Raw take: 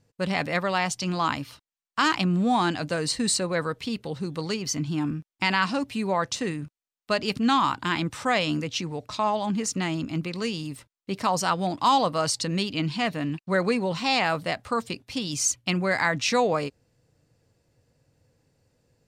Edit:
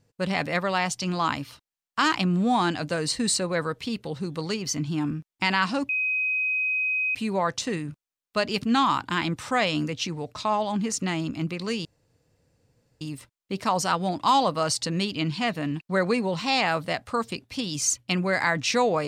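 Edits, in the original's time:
0:05.89: insert tone 2,520 Hz −22.5 dBFS 1.26 s
0:10.59: splice in room tone 1.16 s

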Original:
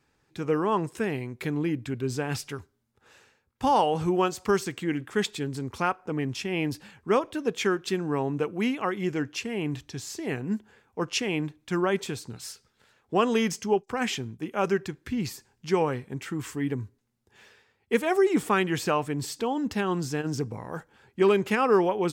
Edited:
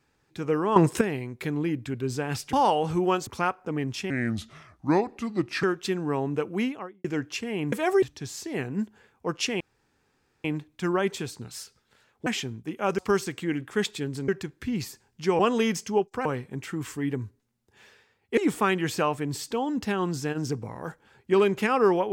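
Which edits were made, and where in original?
0:00.76–0:01.01: clip gain +11 dB
0:02.53–0:03.64: remove
0:04.38–0:05.68: move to 0:14.73
0:06.51–0:07.66: play speed 75%
0:08.58–0:09.07: fade out and dull
0:11.33: splice in room tone 0.84 s
0:13.15–0:14.01: move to 0:15.84
0:17.96–0:18.26: move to 0:09.75

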